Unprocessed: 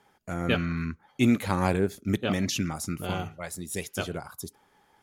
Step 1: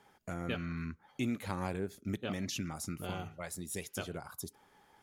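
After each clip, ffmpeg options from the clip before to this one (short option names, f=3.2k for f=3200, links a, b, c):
-af "acompressor=threshold=-40dB:ratio=2,volume=-1dB"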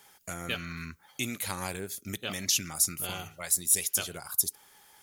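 -af "equalizer=f=250:w=1.5:g=-3,crystalizer=i=7.5:c=0,volume=-1dB"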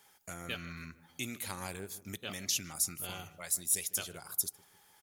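-filter_complex "[0:a]asplit=2[a][b];[b]adelay=152,lowpass=f=1.4k:p=1,volume=-16.5dB,asplit=2[c][d];[d]adelay=152,lowpass=f=1.4k:p=1,volume=0.54,asplit=2[e][f];[f]adelay=152,lowpass=f=1.4k:p=1,volume=0.54,asplit=2[g][h];[h]adelay=152,lowpass=f=1.4k:p=1,volume=0.54,asplit=2[i][j];[j]adelay=152,lowpass=f=1.4k:p=1,volume=0.54[k];[a][c][e][g][i][k]amix=inputs=6:normalize=0,volume=-6dB"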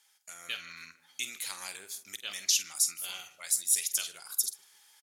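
-filter_complex "[0:a]bandpass=f=5.3k:t=q:w=0.62:csg=0,asplit=2[a][b];[b]adelay=48,volume=-12.5dB[c];[a][c]amix=inputs=2:normalize=0,dynaudnorm=f=240:g=3:m=7dB"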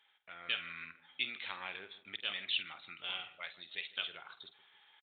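-af "aresample=8000,aresample=44100,volume=1.5dB"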